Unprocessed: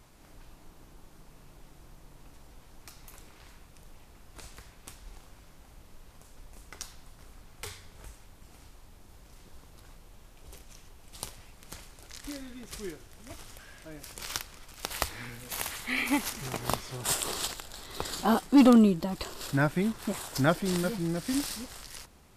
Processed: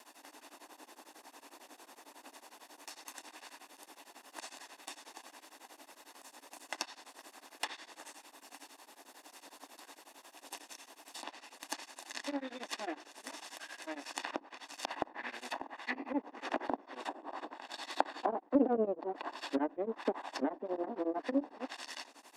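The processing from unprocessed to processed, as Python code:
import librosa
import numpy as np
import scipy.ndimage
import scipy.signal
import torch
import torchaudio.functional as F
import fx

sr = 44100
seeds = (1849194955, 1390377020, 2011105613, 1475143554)

y = fx.lower_of_two(x, sr, delay_ms=1.1)
y = scipy.signal.sosfilt(scipy.signal.ellip(4, 1.0, 50, 280.0, 'highpass', fs=sr, output='sos'), y)
y = fx.rider(y, sr, range_db=4, speed_s=0.5)
y = fx.env_lowpass_down(y, sr, base_hz=520.0, full_db=-31.0)
y = y * np.abs(np.cos(np.pi * 11.0 * np.arange(len(y)) / sr))
y = y * 10.0 ** (5.5 / 20.0)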